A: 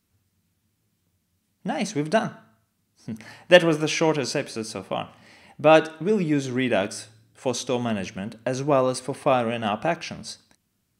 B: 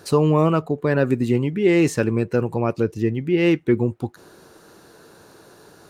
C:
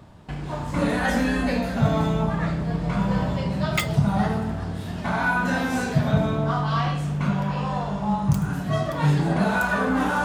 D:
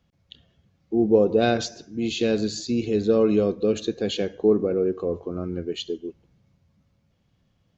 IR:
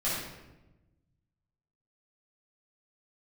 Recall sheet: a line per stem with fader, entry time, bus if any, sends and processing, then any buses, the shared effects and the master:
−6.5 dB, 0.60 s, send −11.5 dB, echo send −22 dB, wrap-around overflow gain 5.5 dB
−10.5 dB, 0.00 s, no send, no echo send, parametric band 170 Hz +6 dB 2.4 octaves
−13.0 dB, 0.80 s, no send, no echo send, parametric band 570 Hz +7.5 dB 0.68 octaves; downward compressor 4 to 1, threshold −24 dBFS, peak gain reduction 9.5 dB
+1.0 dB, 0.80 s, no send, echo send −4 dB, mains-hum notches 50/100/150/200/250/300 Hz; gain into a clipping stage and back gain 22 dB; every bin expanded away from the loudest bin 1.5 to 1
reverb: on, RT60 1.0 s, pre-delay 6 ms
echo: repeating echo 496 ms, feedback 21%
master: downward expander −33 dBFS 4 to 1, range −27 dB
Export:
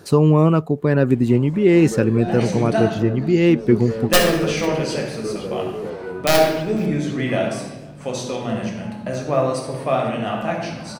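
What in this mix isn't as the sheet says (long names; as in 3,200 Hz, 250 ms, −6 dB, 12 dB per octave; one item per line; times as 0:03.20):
stem A: send −11.5 dB → −3.5 dB
stem B −10.5 dB → −1.0 dB
master: missing downward expander −33 dBFS 4 to 1, range −27 dB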